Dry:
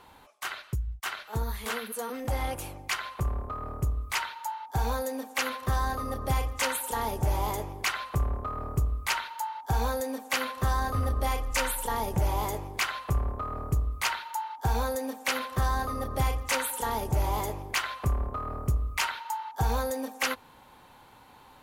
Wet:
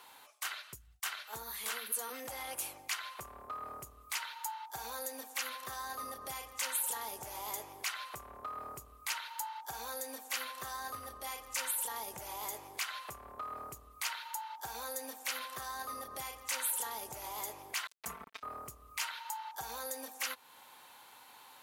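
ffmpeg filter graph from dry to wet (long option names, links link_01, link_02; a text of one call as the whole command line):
ffmpeg -i in.wav -filter_complex "[0:a]asettb=1/sr,asplit=3[link_01][link_02][link_03];[link_01]atrim=end=17.874[link_04];[link_02]atrim=start=17.87:end=18.43,asetpts=PTS-STARTPTS,afade=type=in:duration=0.004:curve=qsin,afade=type=out:start_time=0.556:duration=0.004:curve=qsin,bandreject=frequency=239.8:width_type=h:width=4,bandreject=frequency=479.6:width_type=h:width=4,bandreject=frequency=719.4:width_type=h:width=4,bandreject=frequency=959.2:width_type=h:width=4,bandreject=frequency=1199:width_type=h:width=4,bandreject=frequency=1438.8:width_type=h:width=4,bandreject=frequency=1678.6:width_type=h:width=4,bandreject=frequency=1918.4:width_type=h:width=4,bandreject=frequency=2158.2:width_type=h:width=4,bandreject=frequency=2398:width_type=h:width=4,bandreject=frequency=2637.8:width_type=h:width=4,bandreject=frequency=2877.6:width_type=h:width=4,bandreject=frequency=3117.4:width_type=h:width=4,bandreject=frequency=3357.2:width_type=h:width=4,bandreject=frequency=3597:width_type=h:width=4,bandreject=frequency=3836.8:width_type=h:width=4,bandreject=frequency=4076.6:width_type=h:width=4,bandreject=frequency=4316.4:width_type=h:width=4,bandreject=frequency=4556.2:width_type=h:width=4,bandreject=frequency=4796:width_type=h:width=4,bandreject=frequency=5035.8:width_type=h:width=4,bandreject=frequency=5275.6:width_type=h:width=4,bandreject=frequency=5515.4:width_type=h:width=4,bandreject=frequency=5755.2:width_type=h:width=4,bandreject=frequency=5995:width_type=h:width=4,bandreject=frequency=6234.8:width_type=h:width=4,bandreject=frequency=6474.6:width_type=h:width=4,acrusher=bits=3:mix=0:aa=0.5,aecho=1:1:4.5:0.93,atrim=end_sample=24696[link_05];[link_03]atrim=start=18.426[link_06];[link_04][link_05]acrossfade=duration=0.004:curve1=hsin:curve2=qsin[link_07];[link_07][link_06]acrossfade=duration=0.004:curve1=qsin:curve2=hsin,alimiter=level_in=4dB:limit=-24dB:level=0:latency=1:release=266,volume=-4dB,highpass=frequency=1100:poles=1,highshelf=frequency=4700:gain=7.5" out.wav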